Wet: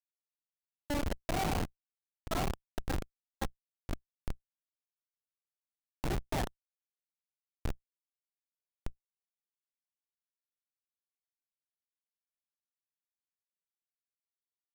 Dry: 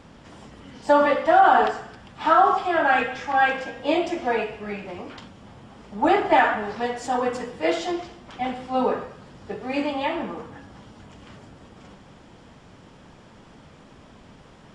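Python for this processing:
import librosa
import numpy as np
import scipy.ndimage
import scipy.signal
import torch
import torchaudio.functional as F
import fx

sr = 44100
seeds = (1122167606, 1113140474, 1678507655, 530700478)

y = fx.schmitt(x, sr, flips_db=-12.5)
y = fx.level_steps(y, sr, step_db=9)
y = F.gain(torch.from_numpy(y), -4.5).numpy()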